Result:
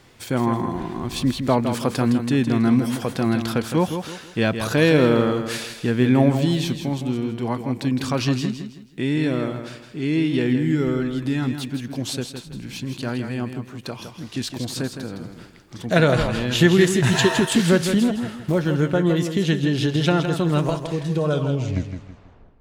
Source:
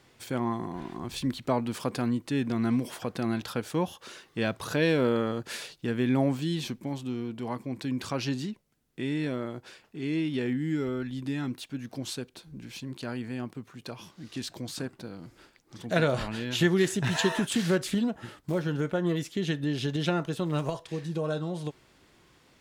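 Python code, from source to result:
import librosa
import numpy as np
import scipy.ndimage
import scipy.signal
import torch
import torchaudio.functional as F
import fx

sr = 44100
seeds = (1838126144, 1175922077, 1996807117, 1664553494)

p1 = fx.tape_stop_end(x, sr, length_s=1.35)
p2 = fx.low_shelf(p1, sr, hz=100.0, db=6.0)
p3 = p2 + fx.echo_feedback(p2, sr, ms=162, feedback_pct=32, wet_db=-8, dry=0)
y = p3 * 10.0 ** (7.5 / 20.0)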